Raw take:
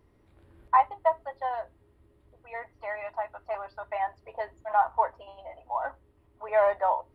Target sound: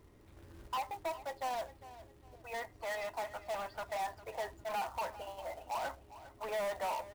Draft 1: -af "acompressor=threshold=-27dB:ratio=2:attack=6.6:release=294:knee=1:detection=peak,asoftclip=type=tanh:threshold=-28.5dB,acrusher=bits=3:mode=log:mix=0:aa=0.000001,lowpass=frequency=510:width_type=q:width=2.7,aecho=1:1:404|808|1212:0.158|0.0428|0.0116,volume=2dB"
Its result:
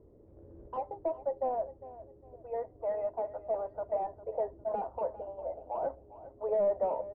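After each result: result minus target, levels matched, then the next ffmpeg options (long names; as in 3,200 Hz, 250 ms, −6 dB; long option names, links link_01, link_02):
soft clipping: distortion −6 dB; 500 Hz band +3.5 dB
-af "acompressor=threshold=-27dB:ratio=2:attack=6.6:release=294:knee=1:detection=peak,asoftclip=type=tanh:threshold=-37dB,acrusher=bits=3:mode=log:mix=0:aa=0.000001,lowpass=frequency=510:width_type=q:width=2.7,aecho=1:1:404|808|1212:0.158|0.0428|0.0116,volume=2dB"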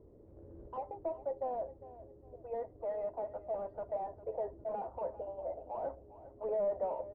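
500 Hz band +4.0 dB
-af "acompressor=threshold=-27dB:ratio=2:attack=6.6:release=294:knee=1:detection=peak,asoftclip=type=tanh:threshold=-37dB,acrusher=bits=3:mode=log:mix=0:aa=0.000001,aecho=1:1:404|808|1212:0.158|0.0428|0.0116,volume=2dB"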